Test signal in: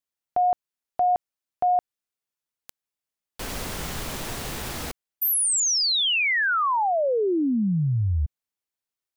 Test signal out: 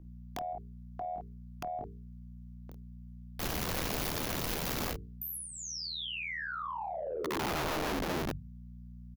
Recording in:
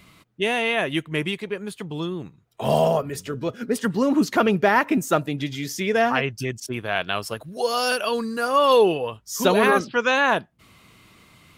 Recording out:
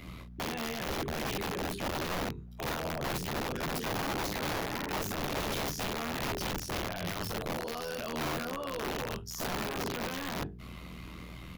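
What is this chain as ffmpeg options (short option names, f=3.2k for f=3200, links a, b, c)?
-filter_complex "[0:a]tremolo=f=80:d=0.919,tiltshelf=f=740:g=3.5,aeval=exprs='val(0)+0.00178*(sin(2*PI*60*n/s)+sin(2*PI*2*60*n/s)/2+sin(2*PI*3*60*n/s)/3+sin(2*PI*4*60*n/s)/4+sin(2*PI*5*60*n/s)/5)':c=same,bandreject=f=50:t=h:w=6,bandreject=f=100:t=h:w=6,bandreject=f=150:t=h:w=6,bandreject=f=200:t=h:w=6,bandreject=f=250:t=h:w=6,bandreject=f=300:t=h:w=6,bandreject=f=350:t=h:w=6,bandreject=f=400:t=h:w=6,bandreject=f=450:t=h:w=6,apsyclip=16.5dB,acompressor=threshold=-21dB:ratio=6:attack=6.5:release=26:knee=6:detection=peak,asplit=2[a][b];[b]aecho=0:1:22|50:0.531|0.266[c];[a][c]amix=inputs=2:normalize=0,acrossover=split=250[d][e];[e]acompressor=threshold=-26dB:ratio=10:attack=1.5:release=41:knee=2.83:detection=peak[f];[d][f]amix=inputs=2:normalize=0,aeval=exprs='(mod(9.44*val(0)+1,2)-1)/9.44':c=same,equalizer=f=8.4k:t=o:w=0.44:g=-8,volume=-9dB"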